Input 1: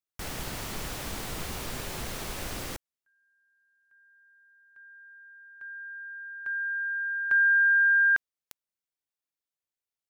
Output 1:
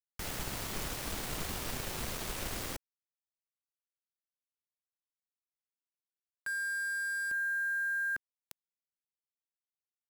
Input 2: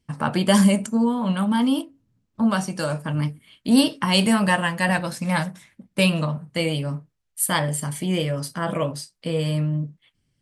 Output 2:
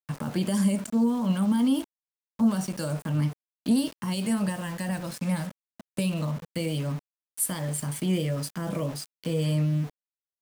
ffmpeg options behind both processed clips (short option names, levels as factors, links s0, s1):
-filter_complex "[0:a]alimiter=limit=0.224:level=0:latency=1:release=460,aeval=exprs='val(0)*gte(abs(val(0)),0.0158)':c=same,acrossover=split=440|5300[s0][s1][s2];[s1]acompressor=threshold=0.0282:ratio=6:attack=0.1:release=127:knee=2.83:detection=peak[s3];[s0][s3][s2]amix=inputs=3:normalize=0,volume=0.841"